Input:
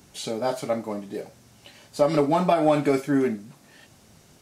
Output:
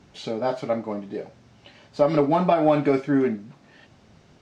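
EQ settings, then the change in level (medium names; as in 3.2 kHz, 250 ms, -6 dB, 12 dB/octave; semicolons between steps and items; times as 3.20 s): distance through air 160 m; +1.5 dB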